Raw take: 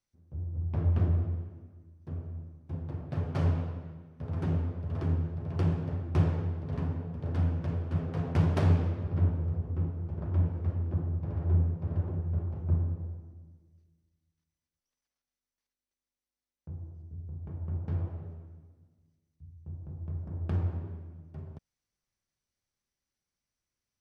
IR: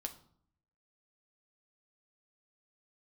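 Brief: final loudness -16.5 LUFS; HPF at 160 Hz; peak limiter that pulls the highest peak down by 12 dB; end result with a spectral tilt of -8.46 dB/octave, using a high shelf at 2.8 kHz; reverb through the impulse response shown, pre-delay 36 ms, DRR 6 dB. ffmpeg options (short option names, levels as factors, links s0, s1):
-filter_complex "[0:a]highpass=160,highshelf=f=2800:g=-5,alimiter=level_in=1.58:limit=0.0631:level=0:latency=1,volume=0.631,asplit=2[s0][s1];[1:a]atrim=start_sample=2205,adelay=36[s2];[s1][s2]afir=irnorm=-1:irlink=0,volume=0.631[s3];[s0][s3]amix=inputs=2:normalize=0,volume=13.3"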